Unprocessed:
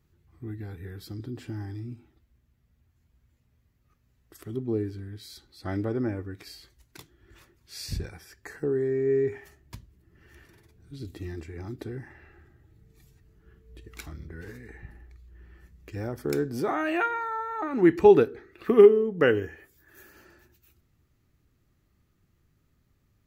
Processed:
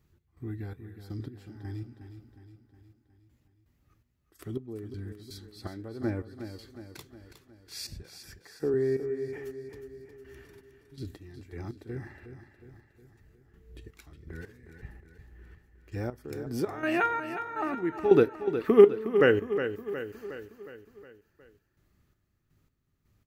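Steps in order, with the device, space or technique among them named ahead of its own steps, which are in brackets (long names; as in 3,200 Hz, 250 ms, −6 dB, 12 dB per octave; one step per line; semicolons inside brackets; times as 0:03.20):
0:08.02–0:08.74: Bessel high-pass filter 200 Hz
trance gate with a delay (gate pattern "x.xx..x.." 82 BPM −12 dB; repeating echo 363 ms, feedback 54%, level −10 dB)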